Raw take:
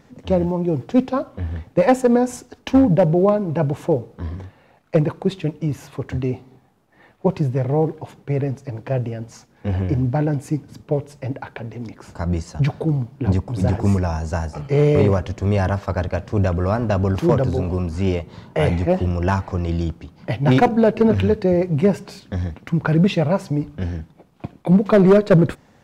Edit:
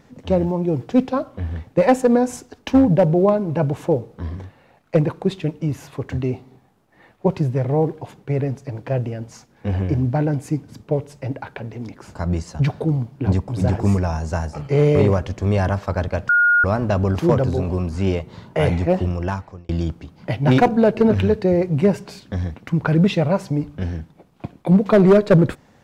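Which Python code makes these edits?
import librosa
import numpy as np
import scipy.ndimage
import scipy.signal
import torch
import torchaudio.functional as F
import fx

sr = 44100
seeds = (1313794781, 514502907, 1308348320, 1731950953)

y = fx.edit(x, sr, fx.bleep(start_s=16.29, length_s=0.35, hz=1430.0, db=-11.5),
    fx.fade_out_span(start_s=19.0, length_s=0.69), tone=tone)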